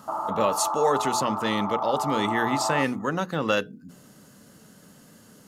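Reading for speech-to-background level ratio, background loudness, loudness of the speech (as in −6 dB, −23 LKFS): 2.5 dB, −29.0 LKFS, −26.5 LKFS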